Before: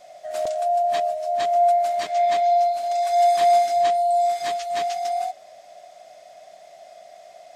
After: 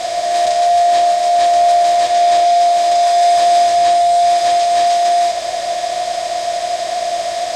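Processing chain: per-bin compression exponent 0.2; LPF 7100 Hz 12 dB/oct; high shelf 4100 Hz +9.5 dB; notch comb 150 Hz; reverb RT60 0.40 s, pre-delay 6 ms, DRR 2.5 dB

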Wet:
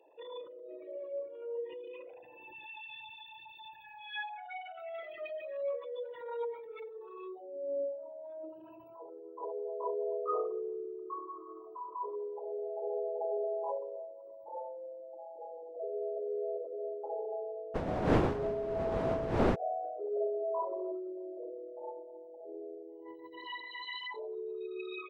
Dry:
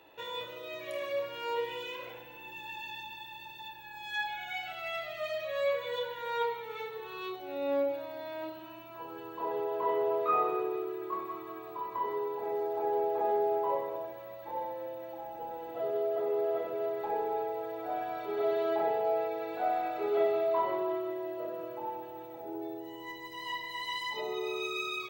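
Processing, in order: formant sharpening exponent 3; 17.74–19.54 wind noise 550 Hz -27 dBFS; gain -5 dB

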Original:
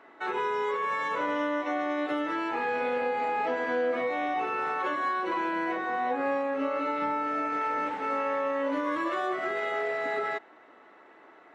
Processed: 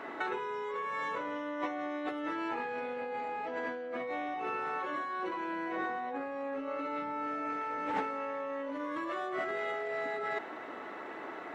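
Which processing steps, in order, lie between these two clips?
low shelf 280 Hz +4 dB; negative-ratio compressor -38 dBFS, ratio -1; gain +1.5 dB

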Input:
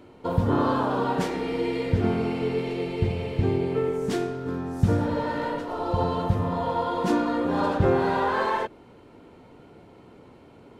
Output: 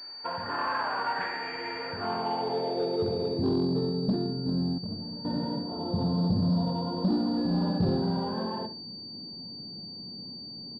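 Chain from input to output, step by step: HPF 58 Hz; comb 1.2 ms, depth 34%; in parallel at +1 dB: limiter -19 dBFS, peak gain reduction 12 dB; 7.36–7.97 on the sum: whine 1700 Hz -28 dBFS; band-pass sweep 1800 Hz -> 200 Hz, 1.61–3.89; soft clip -22 dBFS, distortion -13 dB; 4.78–5.25 resonator 220 Hz, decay 0.9 s, mix 80%; feedback echo 63 ms, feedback 29%, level -13 dB; pulse-width modulation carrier 4600 Hz; gain +2.5 dB

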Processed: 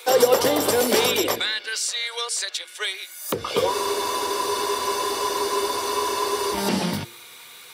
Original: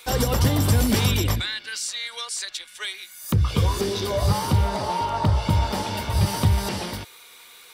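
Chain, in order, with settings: high-pass sweep 450 Hz -> 120 Hz, 6.3–7.13; de-hum 116.3 Hz, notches 4; spectral freeze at 3.75, 2.78 s; gain +3.5 dB

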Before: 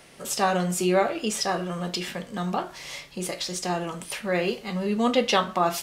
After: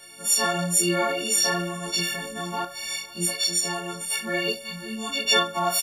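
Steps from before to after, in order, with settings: frequency quantiser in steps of 4 st; 4.53–5.25 bell 480 Hz -10.5 dB 2.8 oct; de-hum 79.43 Hz, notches 9; chorus voices 4, 0.58 Hz, delay 21 ms, depth 4.6 ms; echo 0.496 s -21.5 dB; 0.95–2.65 sustainer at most 36 dB/s

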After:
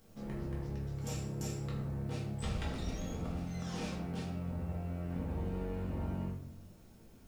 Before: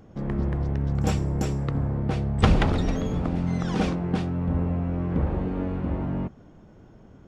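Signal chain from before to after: pre-emphasis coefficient 0.8; compressor, threshold -38 dBFS, peak gain reduction 12 dB; requantised 12-bit, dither triangular; reverb RT60 0.70 s, pre-delay 4 ms, DRR -5 dB; gain -3.5 dB

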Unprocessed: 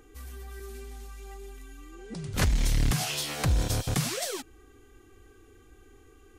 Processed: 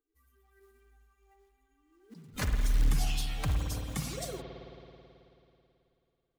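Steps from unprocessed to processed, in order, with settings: per-bin expansion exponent 2; short-mantissa float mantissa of 2-bit; spring tank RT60 2.9 s, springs 54 ms, chirp 30 ms, DRR 3 dB; gain -4 dB

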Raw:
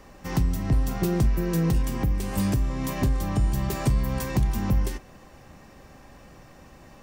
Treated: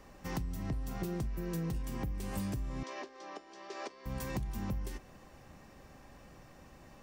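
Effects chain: compressor, threshold -27 dBFS, peak gain reduction 10 dB; 2.83–4.06 elliptic band-pass 370–5700 Hz, stop band 50 dB; gain -6.5 dB

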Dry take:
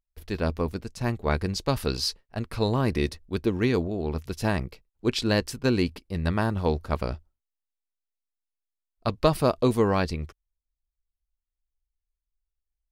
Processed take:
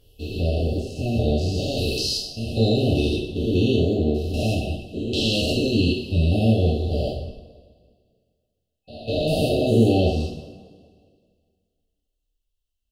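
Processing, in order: stepped spectrum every 0.2 s; bell 2700 Hz +9 dB 1.1 oct; FFT band-reject 780–2600 Hz; on a send: tape echo 0.203 s, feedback 55%, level -17.5 dB, low-pass 1100 Hz; on the sum: two-slope reverb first 0.61 s, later 2 s, from -18 dB, DRR -6 dB

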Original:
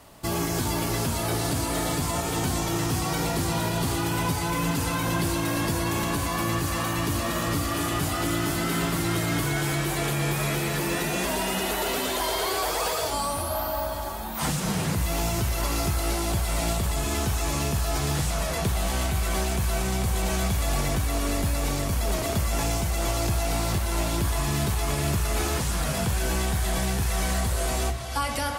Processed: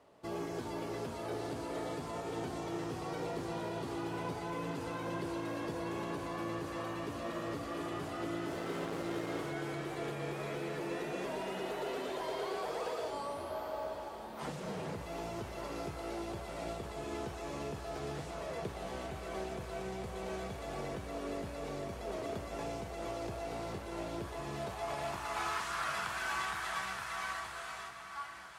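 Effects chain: ending faded out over 2.09 s; passive tone stack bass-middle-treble 5-5-5; 8.51–9.51 requantised 6-bit, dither none; band-pass sweep 450 Hz -> 1200 Hz, 24.4–25.66; diffused feedback echo 1.033 s, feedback 53%, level -12 dB; gain +15 dB

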